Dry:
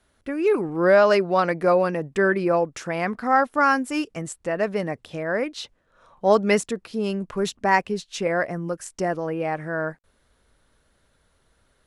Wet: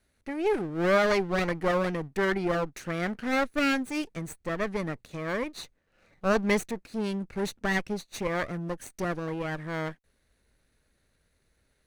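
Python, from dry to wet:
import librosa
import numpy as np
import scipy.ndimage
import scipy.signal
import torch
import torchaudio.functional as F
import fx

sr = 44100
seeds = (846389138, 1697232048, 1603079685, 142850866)

y = fx.lower_of_two(x, sr, delay_ms=0.48)
y = F.gain(torch.from_numpy(y), -5.0).numpy()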